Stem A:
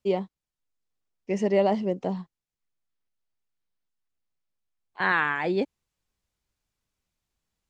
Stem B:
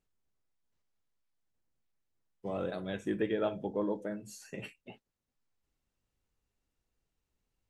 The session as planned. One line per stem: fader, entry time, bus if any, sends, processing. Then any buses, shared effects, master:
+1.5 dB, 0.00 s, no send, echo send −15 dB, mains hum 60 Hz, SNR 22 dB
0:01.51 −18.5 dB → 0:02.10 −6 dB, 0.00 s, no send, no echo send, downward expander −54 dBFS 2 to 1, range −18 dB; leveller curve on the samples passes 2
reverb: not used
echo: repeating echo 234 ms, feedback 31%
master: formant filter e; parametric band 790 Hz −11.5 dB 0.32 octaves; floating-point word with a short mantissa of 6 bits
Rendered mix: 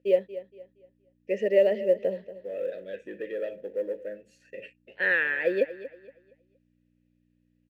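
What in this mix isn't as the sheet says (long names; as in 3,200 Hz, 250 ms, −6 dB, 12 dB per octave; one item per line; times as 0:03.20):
stem A +1.5 dB → +11.5 dB
stem B −18.5 dB → −9.0 dB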